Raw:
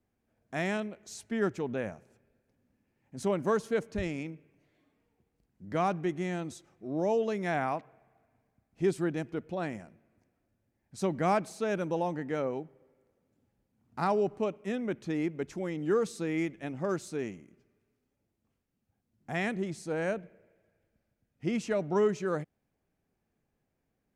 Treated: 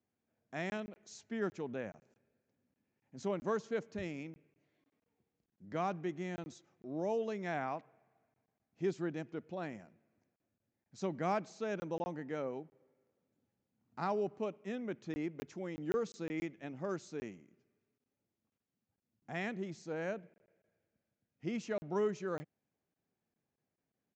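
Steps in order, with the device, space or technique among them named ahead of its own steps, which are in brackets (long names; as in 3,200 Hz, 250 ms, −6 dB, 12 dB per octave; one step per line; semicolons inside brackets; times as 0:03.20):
call with lost packets (high-pass filter 110 Hz 12 dB per octave; downsampling to 16,000 Hz; dropped packets of 20 ms random)
level −7 dB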